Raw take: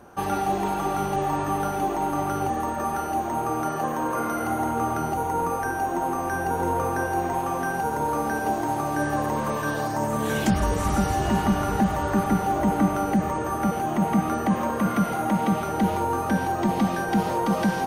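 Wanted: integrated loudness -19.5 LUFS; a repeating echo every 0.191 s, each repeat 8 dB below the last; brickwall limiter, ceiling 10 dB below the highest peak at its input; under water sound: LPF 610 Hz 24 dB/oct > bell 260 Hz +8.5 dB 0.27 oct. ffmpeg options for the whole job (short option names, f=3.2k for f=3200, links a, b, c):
-af "alimiter=limit=-20dB:level=0:latency=1,lowpass=f=610:w=0.5412,lowpass=f=610:w=1.3066,equalizer=f=260:t=o:w=0.27:g=8.5,aecho=1:1:191|382|573|764|955:0.398|0.159|0.0637|0.0255|0.0102,volume=10dB"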